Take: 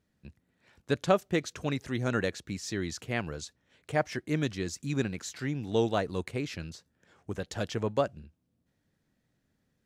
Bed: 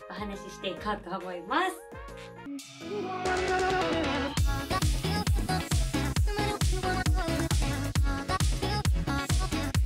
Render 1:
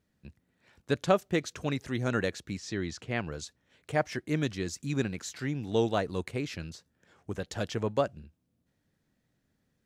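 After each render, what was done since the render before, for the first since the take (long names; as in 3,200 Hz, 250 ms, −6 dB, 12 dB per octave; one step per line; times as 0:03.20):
0:02.57–0:03.32: high-frequency loss of the air 64 metres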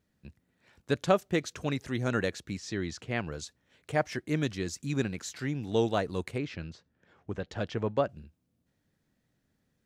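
0:06.38–0:08.09: Bessel low-pass filter 3,200 Hz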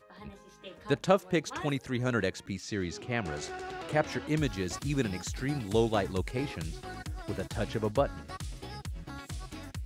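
mix in bed −13 dB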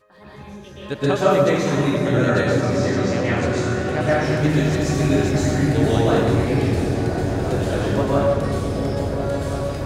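echo whose low-pass opens from repeat to repeat 344 ms, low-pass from 200 Hz, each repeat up 1 octave, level 0 dB
dense smooth reverb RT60 1.6 s, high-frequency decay 0.7×, pre-delay 110 ms, DRR −9.5 dB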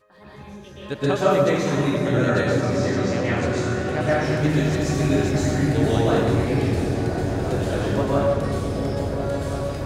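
level −2 dB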